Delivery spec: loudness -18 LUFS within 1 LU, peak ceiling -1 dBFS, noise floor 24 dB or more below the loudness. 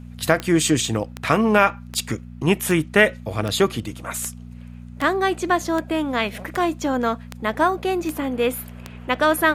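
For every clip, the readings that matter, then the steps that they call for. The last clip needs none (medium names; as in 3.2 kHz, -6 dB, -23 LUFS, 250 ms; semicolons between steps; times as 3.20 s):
clicks found 12; hum 60 Hz; highest harmonic 240 Hz; hum level -35 dBFS; loudness -21.5 LUFS; peak level -1.5 dBFS; loudness target -18.0 LUFS
-> de-click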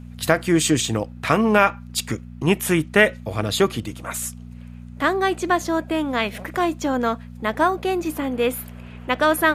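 clicks found 0; hum 60 Hz; highest harmonic 240 Hz; hum level -35 dBFS
-> de-hum 60 Hz, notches 4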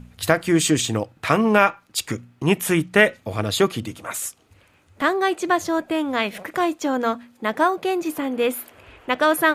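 hum not found; loudness -21.5 LUFS; peak level -1.5 dBFS; loudness target -18.0 LUFS
-> trim +3.5 dB; peak limiter -1 dBFS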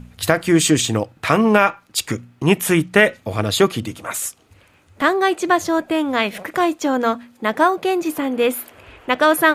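loudness -18.5 LUFS; peak level -1.0 dBFS; noise floor -55 dBFS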